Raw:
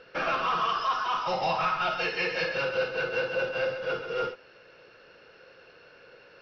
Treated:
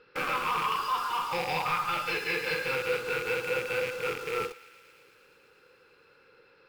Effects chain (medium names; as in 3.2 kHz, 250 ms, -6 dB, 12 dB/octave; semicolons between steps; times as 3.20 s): rattle on loud lows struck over -44 dBFS, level -22 dBFS; in parallel at -3 dB: bit crusher 6-bit; on the sum: Butterworth band-stop 690 Hz, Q 4.3; on a send: thinning echo 109 ms, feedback 85%, high-pass 1 kHz, level -18.5 dB; on the sum: speed mistake 25 fps video run at 24 fps; trim -6.5 dB